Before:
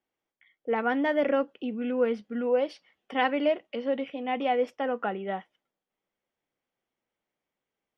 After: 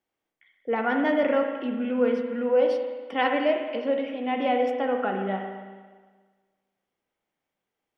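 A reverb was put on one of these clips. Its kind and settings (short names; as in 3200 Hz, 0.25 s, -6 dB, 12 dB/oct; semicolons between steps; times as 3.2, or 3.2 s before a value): spring tank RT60 1.5 s, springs 36/56 ms, chirp 50 ms, DRR 3 dB; gain +1 dB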